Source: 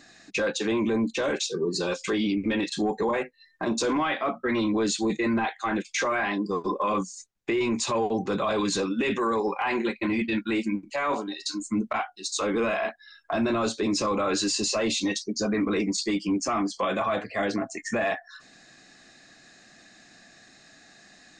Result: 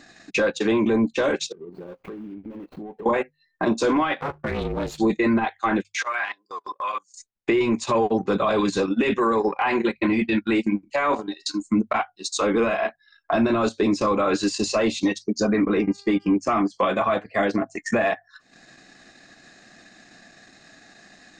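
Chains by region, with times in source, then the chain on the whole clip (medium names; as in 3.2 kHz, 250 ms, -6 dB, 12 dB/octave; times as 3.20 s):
1.52–3.06 s: median filter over 25 samples + peaking EQ 7.2 kHz -12.5 dB 2.4 oct + compression 5:1, threshold -41 dBFS
4.21–4.98 s: partial rectifier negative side -12 dB + ring modulator 150 Hz
5.83–7.14 s: high-pass 1.1 kHz + transient shaper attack -5 dB, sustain -12 dB
15.68–16.34 s: treble shelf 4.4 kHz -11 dB + mains buzz 400 Hz, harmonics 7, -51 dBFS
whole clip: treble shelf 3.4 kHz -5.5 dB; hum notches 50/100/150 Hz; transient shaper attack +2 dB, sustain -12 dB; trim +5 dB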